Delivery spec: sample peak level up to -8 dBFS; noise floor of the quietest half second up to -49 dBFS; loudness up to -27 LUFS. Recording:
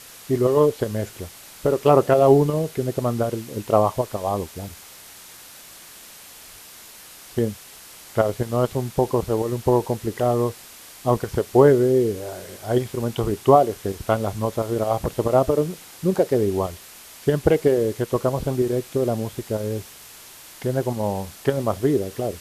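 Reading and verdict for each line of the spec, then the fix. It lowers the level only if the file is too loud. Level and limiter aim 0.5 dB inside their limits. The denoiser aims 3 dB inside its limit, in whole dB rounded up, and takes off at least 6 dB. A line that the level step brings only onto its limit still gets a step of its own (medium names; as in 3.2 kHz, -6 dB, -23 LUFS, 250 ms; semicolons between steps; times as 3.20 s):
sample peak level -1.5 dBFS: fail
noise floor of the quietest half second -44 dBFS: fail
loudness -22.0 LUFS: fail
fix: trim -5.5 dB; peak limiter -8.5 dBFS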